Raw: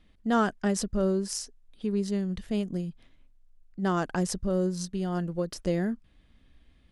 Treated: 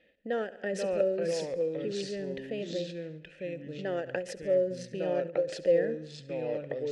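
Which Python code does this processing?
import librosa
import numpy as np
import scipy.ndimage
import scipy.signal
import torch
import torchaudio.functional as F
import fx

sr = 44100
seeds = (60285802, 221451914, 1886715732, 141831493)

p1 = fx.over_compress(x, sr, threshold_db=-31.0, ratio=-0.5)
p2 = x + F.gain(torch.from_numpy(p1), 1.0).numpy()
p3 = fx.echo_pitch(p2, sr, ms=425, semitones=-3, count=2, db_per_echo=-3.0)
p4 = fx.vowel_filter(p3, sr, vowel='e')
p5 = fx.echo_feedback(p4, sr, ms=70, feedback_pct=57, wet_db=-17)
p6 = fx.end_taper(p5, sr, db_per_s=160.0)
y = F.gain(torch.from_numpy(p6), 6.5).numpy()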